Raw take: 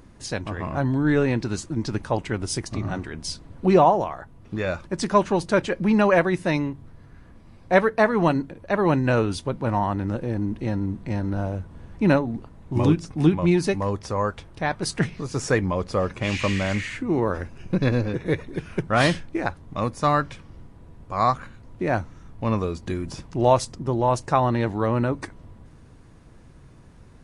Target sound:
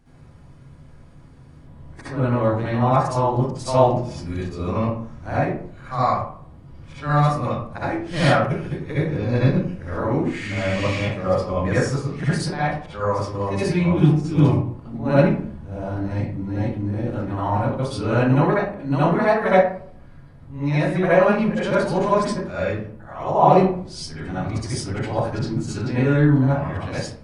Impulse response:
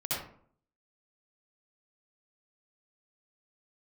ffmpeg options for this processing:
-filter_complex "[0:a]areverse[s0];[1:a]atrim=start_sample=2205[s1];[s0][s1]afir=irnorm=-1:irlink=0,volume=0.596"

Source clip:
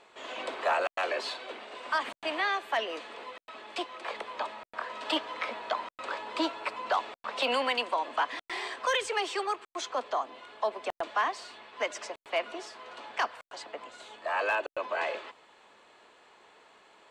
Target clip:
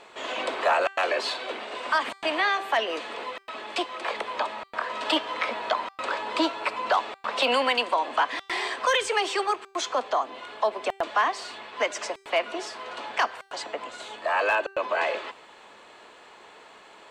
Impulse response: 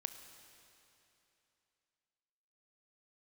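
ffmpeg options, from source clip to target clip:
-filter_complex "[0:a]bandreject=f=391.1:t=h:w=4,bandreject=f=782.2:t=h:w=4,bandreject=f=1173.3:t=h:w=4,bandreject=f=1564.4:t=h:w=4,bandreject=f=1955.5:t=h:w=4,bandreject=f=2346.6:t=h:w=4,bandreject=f=2737.7:t=h:w=4,bandreject=f=3128.8:t=h:w=4,bandreject=f=3519.9:t=h:w=4,bandreject=f=3911:t=h:w=4,bandreject=f=4302.1:t=h:w=4,bandreject=f=4693.2:t=h:w=4,bandreject=f=5084.3:t=h:w=4,bandreject=f=5475.4:t=h:w=4,bandreject=f=5866.5:t=h:w=4,bandreject=f=6257.6:t=h:w=4,bandreject=f=6648.7:t=h:w=4,bandreject=f=7039.8:t=h:w=4,bandreject=f=7430.9:t=h:w=4,bandreject=f=7822:t=h:w=4,bandreject=f=8213.1:t=h:w=4,bandreject=f=8604.2:t=h:w=4,bandreject=f=8995.3:t=h:w=4,bandreject=f=9386.4:t=h:w=4,bandreject=f=9777.5:t=h:w=4,bandreject=f=10168.6:t=h:w=4,bandreject=f=10559.7:t=h:w=4,bandreject=f=10950.8:t=h:w=4,bandreject=f=11341.9:t=h:w=4,bandreject=f=11733:t=h:w=4,bandreject=f=12124.1:t=h:w=4,bandreject=f=12515.2:t=h:w=4,bandreject=f=12906.3:t=h:w=4,bandreject=f=13297.4:t=h:w=4,bandreject=f=13688.5:t=h:w=4,bandreject=f=14079.6:t=h:w=4,bandreject=f=14470.7:t=h:w=4,bandreject=f=14861.8:t=h:w=4,bandreject=f=15252.9:t=h:w=4,asplit=2[s0][s1];[s1]acompressor=threshold=0.0141:ratio=6,volume=0.794[s2];[s0][s2]amix=inputs=2:normalize=0,volume=1.5"

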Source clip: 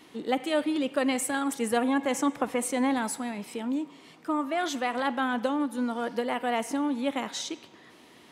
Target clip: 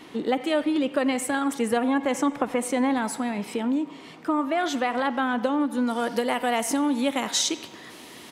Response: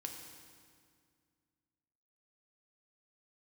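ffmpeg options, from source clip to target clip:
-filter_complex "[0:a]acompressor=threshold=0.0224:ratio=2,asetnsamples=n=441:p=0,asendcmd='5.87 highshelf g 8',highshelf=f=4600:g=-6.5,asplit=2[s0][s1];[s1]adelay=90,highpass=300,lowpass=3400,asoftclip=type=hard:threshold=0.0447,volume=0.126[s2];[s0][s2]amix=inputs=2:normalize=0,volume=2.66"

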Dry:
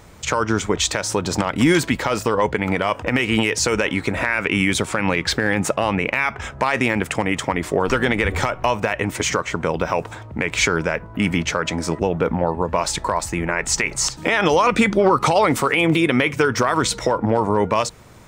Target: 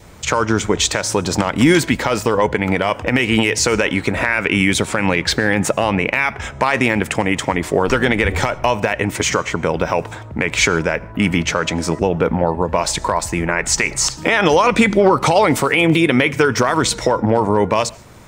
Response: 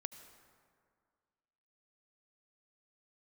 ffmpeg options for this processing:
-filter_complex "[0:a]adynamicequalizer=threshold=0.0141:dfrequency=1200:dqfactor=3.8:tfrequency=1200:tqfactor=3.8:attack=5:release=100:ratio=0.375:range=2.5:mode=cutabove:tftype=bell,asplit=2[s0][s1];[1:a]atrim=start_sample=2205,afade=t=out:st=0.21:d=0.01,atrim=end_sample=9702[s2];[s1][s2]afir=irnorm=-1:irlink=0,volume=0.708[s3];[s0][s3]amix=inputs=2:normalize=0"

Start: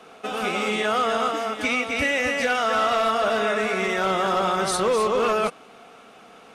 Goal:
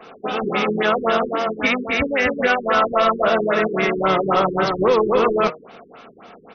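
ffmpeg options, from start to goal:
-filter_complex "[0:a]bandreject=f=156.2:t=h:w=4,bandreject=f=312.4:t=h:w=4,bandreject=f=468.6:t=h:w=4,bandreject=f=624.8:t=h:w=4,bandreject=f=781:t=h:w=4,bandreject=f=937.2:t=h:w=4,bandreject=f=1093.4:t=h:w=4,bandreject=f=1249.6:t=h:w=4,bandreject=f=1405.8:t=h:w=4,bandreject=f=1562:t=h:w=4,bandreject=f=1718.2:t=h:w=4,bandreject=f=1874.4:t=h:w=4,bandreject=f=2030.6:t=h:w=4,bandreject=f=2186.8:t=h:w=4,bandreject=f=2343:t=h:w=4,bandreject=f=2499.2:t=h:w=4,asplit=2[s0][s1];[s1]asetrate=35002,aresample=44100,atempo=1.25992,volume=0.282[s2];[s0][s2]amix=inputs=2:normalize=0,afftfilt=real='re*lt(b*sr/1024,420*pow(6500/420,0.5+0.5*sin(2*PI*3.7*pts/sr)))':imag='im*lt(b*sr/1024,420*pow(6500/420,0.5+0.5*sin(2*PI*3.7*pts/sr)))':win_size=1024:overlap=0.75,volume=1.88"

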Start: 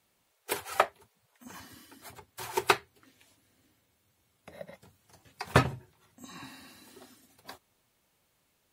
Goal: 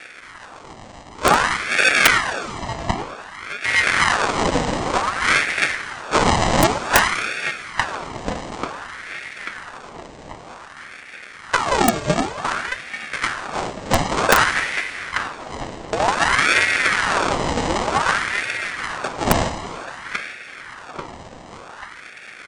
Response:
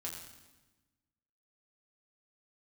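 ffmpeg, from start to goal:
-filter_complex "[0:a]acompressor=threshold=0.00447:ratio=4,lowshelf=f=340:g=4,bandreject=f=880:w=14,acrusher=samples=17:mix=1:aa=0.000001,asplit=2[s0][s1];[1:a]atrim=start_sample=2205,lowshelf=f=410:g=-11.5[s2];[s1][s2]afir=irnorm=-1:irlink=0,volume=0.631[s3];[s0][s3]amix=inputs=2:normalize=0,asetrate=17111,aresample=44100,lowshelf=f=73:g=-12,asplit=2[s4][s5];[s5]adelay=839,lowpass=f=4200:p=1,volume=0.2,asplit=2[s6][s7];[s7]adelay=839,lowpass=f=4200:p=1,volume=0.54,asplit=2[s8][s9];[s9]adelay=839,lowpass=f=4200:p=1,volume=0.54,asplit=2[s10][s11];[s11]adelay=839,lowpass=f=4200:p=1,volume=0.54,asplit=2[s12][s13];[s13]adelay=839,lowpass=f=4200:p=1,volume=0.54[s14];[s4][s6][s8][s10][s12][s14]amix=inputs=6:normalize=0,aeval=exprs='(mod(37.6*val(0)+1,2)-1)/37.6':c=same,alimiter=level_in=59.6:limit=0.891:release=50:level=0:latency=1,aeval=exprs='val(0)*sin(2*PI*1200*n/s+1200*0.7/0.54*sin(2*PI*0.54*n/s))':c=same"

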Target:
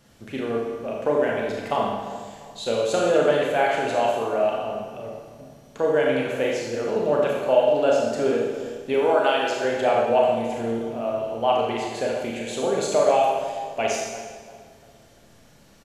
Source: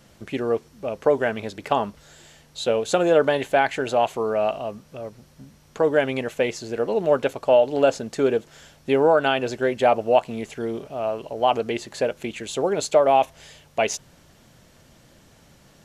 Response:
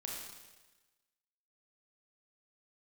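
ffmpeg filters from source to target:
-filter_complex "[0:a]asettb=1/sr,asplit=3[s0][s1][s2];[s0]atrim=end=8.944[s3];[s1]atrim=start=8.94:end=9.65,asetpts=PTS-STARTPTS,afade=t=in:d=0.004:c=qsin,afade=t=out:st=0.706:d=0.004:c=qsin,bass=f=250:g=-13,treble=f=4000:g=5[s4];[s2]atrim=start=9.646[s5];[s3][s4]acrossfade=d=0.004:c1=hsin:c2=qsin[s6];[s6][s5]acrossfade=d=0.004:c1=qsin:c2=hsin,asplit=2[s7][s8];[s8]adelay=347,lowpass=f=1700:p=1,volume=0.224,asplit=2[s9][s10];[s10]adelay=347,lowpass=f=1700:p=1,volume=0.41,asplit=2[s11][s12];[s12]adelay=347,lowpass=f=1700:p=1,volume=0.41,asplit=2[s13][s14];[s14]adelay=347,lowpass=f=1700:p=1,volume=0.41[s15];[s7][s9][s11][s13][s15]amix=inputs=5:normalize=0[s16];[1:a]atrim=start_sample=2205[s17];[s16][s17]afir=irnorm=-1:irlink=0"

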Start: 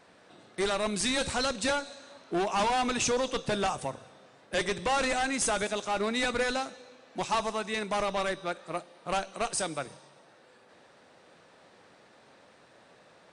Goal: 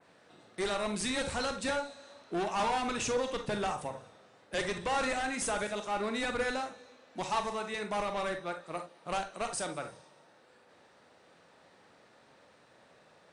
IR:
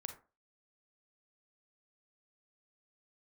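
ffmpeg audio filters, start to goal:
-filter_complex "[1:a]atrim=start_sample=2205,afade=t=out:st=0.14:d=0.01,atrim=end_sample=6615[s0];[0:a][s0]afir=irnorm=-1:irlink=0,adynamicequalizer=threshold=0.00251:dfrequency=5400:dqfactor=0.77:tfrequency=5400:tqfactor=0.77:attack=5:release=100:ratio=0.375:range=2:mode=cutabove:tftype=bell"

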